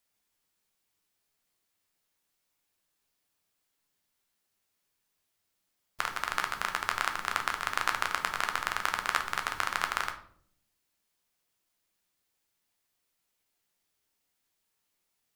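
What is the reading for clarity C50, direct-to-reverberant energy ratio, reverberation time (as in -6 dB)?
11.0 dB, 4.5 dB, 0.60 s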